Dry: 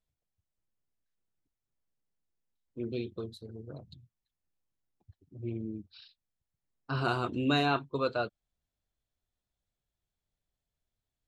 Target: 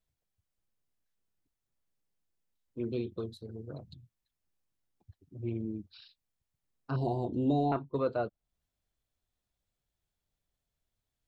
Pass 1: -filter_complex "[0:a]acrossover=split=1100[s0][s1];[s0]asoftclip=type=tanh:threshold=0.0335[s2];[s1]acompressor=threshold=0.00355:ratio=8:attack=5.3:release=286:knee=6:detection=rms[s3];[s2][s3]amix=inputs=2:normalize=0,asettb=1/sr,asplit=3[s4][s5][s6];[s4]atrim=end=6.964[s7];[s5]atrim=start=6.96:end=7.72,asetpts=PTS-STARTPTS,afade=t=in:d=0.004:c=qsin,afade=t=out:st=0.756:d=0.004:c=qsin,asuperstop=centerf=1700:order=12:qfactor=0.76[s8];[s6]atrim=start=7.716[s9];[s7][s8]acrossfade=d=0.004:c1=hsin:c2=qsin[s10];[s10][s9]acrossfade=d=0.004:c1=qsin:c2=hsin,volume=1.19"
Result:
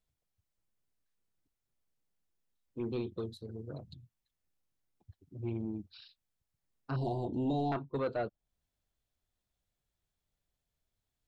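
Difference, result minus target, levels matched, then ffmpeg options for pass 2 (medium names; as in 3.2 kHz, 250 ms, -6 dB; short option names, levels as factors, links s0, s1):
saturation: distortion +13 dB
-filter_complex "[0:a]acrossover=split=1100[s0][s1];[s0]asoftclip=type=tanh:threshold=0.112[s2];[s1]acompressor=threshold=0.00355:ratio=8:attack=5.3:release=286:knee=6:detection=rms[s3];[s2][s3]amix=inputs=2:normalize=0,asettb=1/sr,asplit=3[s4][s5][s6];[s4]atrim=end=6.964[s7];[s5]atrim=start=6.96:end=7.72,asetpts=PTS-STARTPTS,afade=t=in:d=0.004:c=qsin,afade=t=out:st=0.756:d=0.004:c=qsin,asuperstop=centerf=1700:order=12:qfactor=0.76[s8];[s6]atrim=start=7.716[s9];[s7][s8]acrossfade=d=0.004:c1=hsin:c2=qsin[s10];[s10][s9]acrossfade=d=0.004:c1=qsin:c2=hsin,volume=1.19"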